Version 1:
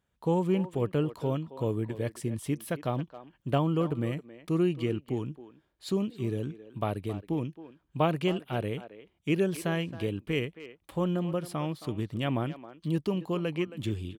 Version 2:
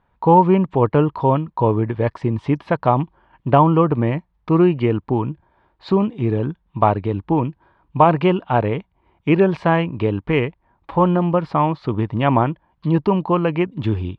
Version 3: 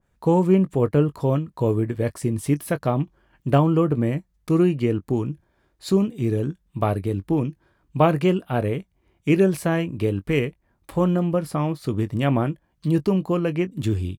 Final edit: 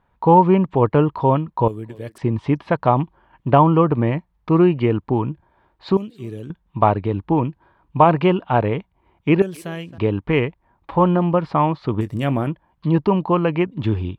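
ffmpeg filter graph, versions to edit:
-filter_complex "[0:a]asplit=3[a][b][c];[1:a]asplit=5[d][e][f][g][h];[d]atrim=end=1.682[i];[a]atrim=start=1.678:end=2.182[j];[e]atrim=start=2.178:end=5.972[k];[b]atrim=start=5.968:end=6.502[l];[f]atrim=start=6.498:end=9.422[m];[c]atrim=start=9.418:end=9.982[n];[g]atrim=start=9.978:end=12.012[o];[2:a]atrim=start=12.008:end=12.472[p];[h]atrim=start=12.468[q];[i][j]acrossfade=d=0.004:c1=hsin:c2=hsin[r];[r][k]acrossfade=d=0.004:c1=hsin:c2=hsin[s];[s][l]acrossfade=d=0.004:c1=hsin:c2=hsin[t];[t][m]acrossfade=d=0.004:c1=hsin:c2=hsin[u];[u][n]acrossfade=d=0.004:c1=hsin:c2=hsin[v];[v][o]acrossfade=d=0.004:c1=hsin:c2=hsin[w];[w][p]acrossfade=d=0.004:c1=hsin:c2=hsin[x];[x][q]acrossfade=d=0.004:c1=hsin:c2=hsin"

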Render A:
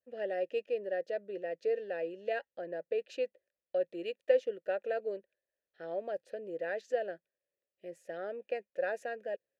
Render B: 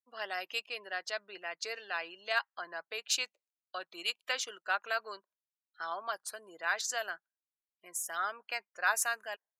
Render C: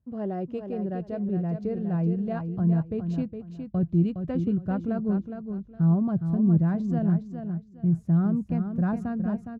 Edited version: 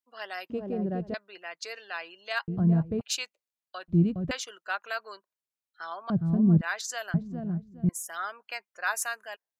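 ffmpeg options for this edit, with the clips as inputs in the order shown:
-filter_complex "[2:a]asplit=5[a][b][c][d][e];[1:a]asplit=6[f][g][h][i][j][k];[f]atrim=end=0.502[l];[a]atrim=start=0.498:end=1.142[m];[g]atrim=start=1.138:end=2.482[n];[b]atrim=start=2.478:end=3.012[o];[h]atrim=start=3.008:end=3.882[p];[c]atrim=start=3.878:end=4.312[q];[i]atrim=start=4.308:end=6.102[r];[d]atrim=start=6.098:end=6.612[s];[j]atrim=start=6.608:end=7.142[t];[e]atrim=start=7.138:end=7.892[u];[k]atrim=start=7.888[v];[l][m]acrossfade=d=0.004:c1=hsin:c2=hsin[w];[w][n]acrossfade=d=0.004:c1=hsin:c2=hsin[x];[x][o]acrossfade=d=0.004:c1=hsin:c2=hsin[y];[y][p]acrossfade=d=0.004:c1=hsin:c2=hsin[z];[z][q]acrossfade=d=0.004:c1=hsin:c2=hsin[aa];[aa][r]acrossfade=d=0.004:c1=hsin:c2=hsin[ab];[ab][s]acrossfade=d=0.004:c1=hsin:c2=hsin[ac];[ac][t]acrossfade=d=0.004:c1=hsin:c2=hsin[ad];[ad][u]acrossfade=d=0.004:c1=hsin:c2=hsin[ae];[ae][v]acrossfade=d=0.004:c1=hsin:c2=hsin"

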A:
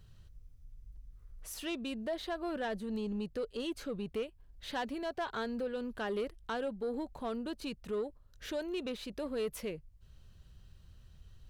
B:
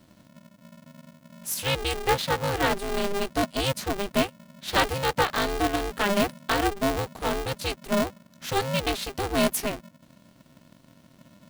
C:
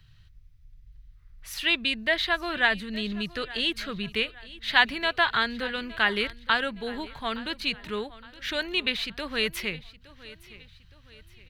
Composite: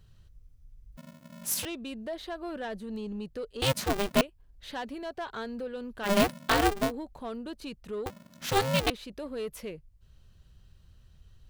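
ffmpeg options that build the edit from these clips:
-filter_complex "[1:a]asplit=4[a][b][c][d];[0:a]asplit=5[e][f][g][h][i];[e]atrim=end=0.972[j];[a]atrim=start=0.968:end=1.652[k];[f]atrim=start=1.648:end=3.622[l];[b]atrim=start=3.618:end=4.212[m];[g]atrim=start=4.208:end=6.12[n];[c]atrim=start=6.02:end=6.92[o];[h]atrim=start=6.82:end=8.062[p];[d]atrim=start=8.058:end=8.902[q];[i]atrim=start=8.898[r];[j][k]acrossfade=d=0.004:c1=hsin:c2=hsin[s];[s][l]acrossfade=d=0.004:c1=hsin:c2=hsin[t];[t][m]acrossfade=d=0.004:c1=hsin:c2=hsin[u];[u][n]acrossfade=d=0.004:c1=hsin:c2=hsin[v];[v][o]acrossfade=d=0.1:c1=tri:c2=tri[w];[w][p]acrossfade=d=0.1:c1=tri:c2=tri[x];[x][q]acrossfade=d=0.004:c1=hsin:c2=hsin[y];[y][r]acrossfade=d=0.004:c1=hsin:c2=hsin"

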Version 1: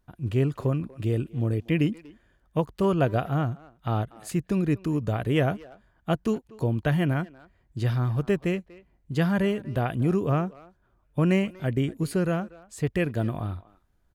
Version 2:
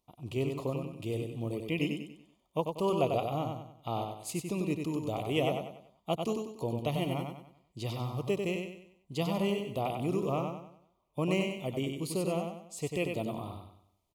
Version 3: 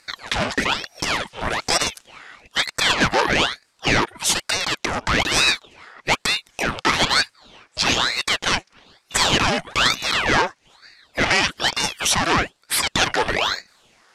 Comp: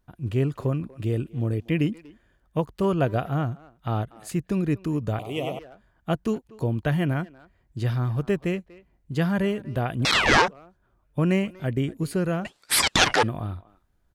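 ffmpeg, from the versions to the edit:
-filter_complex "[2:a]asplit=2[a][b];[0:a]asplit=4[c][d][e][f];[c]atrim=end=5.192[g];[1:a]atrim=start=5.188:end=5.592[h];[d]atrim=start=5.588:end=10.052[i];[a]atrim=start=10.048:end=10.482[j];[e]atrim=start=10.478:end=12.452[k];[b]atrim=start=12.448:end=13.232[l];[f]atrim=start=13.228[m];[g][h]acrossfade=d=0.004:c1=hsin:c2=hsin[n];[n][i]acrossfade=d=0.004:c1=hsin:c2=hsin[o];[o][j]acrossfade=d=0.004:c1=hsin:c2=hsin[p];[p][k]acrossfade=d=0.004:c1=hsin:c2=hsin[q];[q][l]acrossfade=d=0.004:c1=hsin:c2=hsin[r];[r][m]acrossfade=d=0.004:c1=hsin:c2=hsin"

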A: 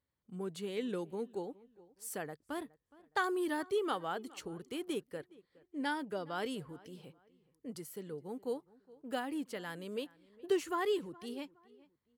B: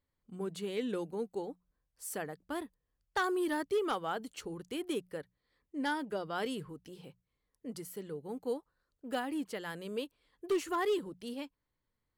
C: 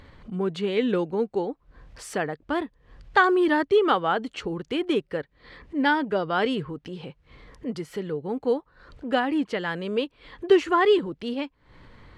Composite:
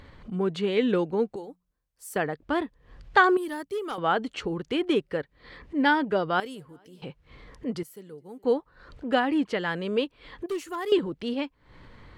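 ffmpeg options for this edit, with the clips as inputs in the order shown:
-filter_complex "[1:a]asplit=3[a][b][c];[0:a]asplit=2[d][e];[2:a]asplit=6[f][g][h][i][j][k];[f]atrim=end=1.362[l];[a]atrim=start=1.358:end=2.162[m];[g]atrim=start=2.158:end=3.372[n];[b]atrim=start=3.368:end=3.982[o];[h]atrim=start=3.978:end=6.402[p];[d]atrim=start=6.398:end=7.022[q];[i]atrim=start=7.018:end=7.832[r];[e]atrim=start=7.828:end=8.442[s];[j]atrim=start=8.438:end=10.462[t];[c]atrim=start=10.458:end=10.922[u];[k]atrim=start=10.918[v];[l][m]acrossfade=d=0.004:c1=hsin:c2=hsin[w];[w][n]acrossfade=d=0.004:c1=hsin:c2=hsin[x];[x][o]acrossfade=d=0.004:c1=hsin:c2=hsin[y];[y][p]acrossfade=d=0.004:c1=hsin:c2=hsin[z];[z][q]acrossfade=d=0.004:c1=hsin:c2=hsin[aa];[aa][r]acrossfade=d=0.004:c1=hsin:c2=hsin[ab];[ab][s]acrossfade=d=0.004:c1=hsin:c2=hsin[ac];[ac][t]acrossfade=d=0.004:c1=hsin:c2=hsin[ad];[ad][u]acrossfade=d=0.004:c1=hsin:c2=hsin[ae];[ae][v]acrossfade=d=0.004:c1=hsin:c2=hsin"

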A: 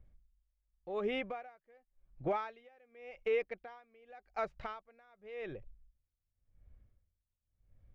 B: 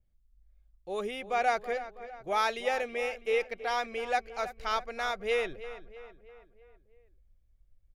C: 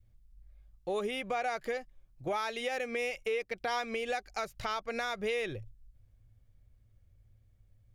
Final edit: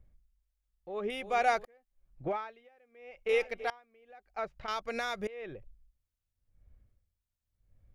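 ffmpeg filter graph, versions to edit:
-filter_complex "[1:a]asplit=2[a][b];[0:a]asplit=4[c][d][e][f];[c]atrim=end=1.102[g];[a]atrim=start=1.098:end=1.652[h];[d]atrim=start=1.648:end=3.292[i];[b]atrim=start=3.288:end=3.702[j];[e]atrim=start=3.698:end=4.682[k];[2:a]atrim=start=4.678:end=5.272[l];[f]atrim=start=5.268[m];[g][h]acrossfade=d=0.004:c1=hsin:c2=hsin[n];[n][i]acrossfade=d=0.004:c1=hsin:c2=hsin[o];[o][j]acrossfade=d=0.004:c1=hsin:c2=hsin[p];[p][k]acrossfade=d=0.004:c1=hsin:c2=hsin[q];[q][l]acrossfade=d=0.004:c1=hsin:c2=hsin[r];[r][m]acrossfade=d=0.004:c1=hsin:c2=hsin"

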